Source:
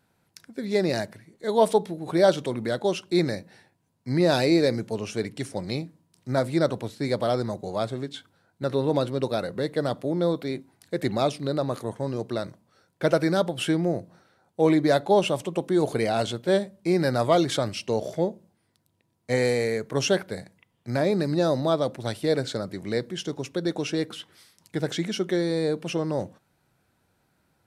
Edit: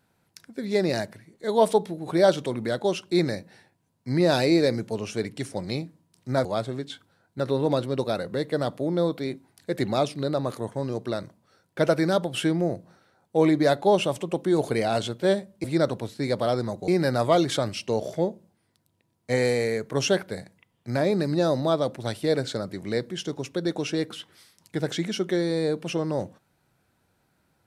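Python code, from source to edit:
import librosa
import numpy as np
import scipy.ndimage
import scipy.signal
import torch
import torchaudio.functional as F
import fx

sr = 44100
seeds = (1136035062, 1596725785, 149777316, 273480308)

y = fx.edit(x, sr, fx.move(start_s=6.45, length_s=1.24, to_s=16.88), tone=tone)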